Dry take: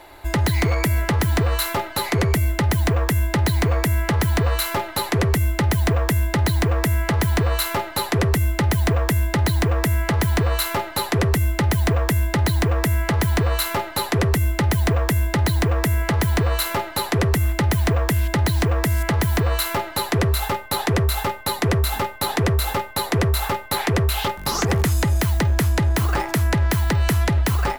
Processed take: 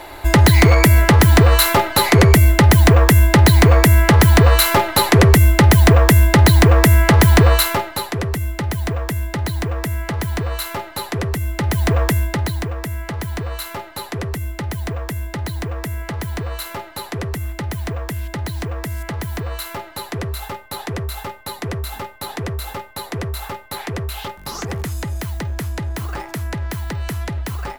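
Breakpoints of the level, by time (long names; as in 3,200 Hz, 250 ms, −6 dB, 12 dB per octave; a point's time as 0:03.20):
0:07.49 +9 dB
0:08.14 −3 dB
0:11.43 −3 dB
0:12.02 +4 dB
0:12.75 −6 dB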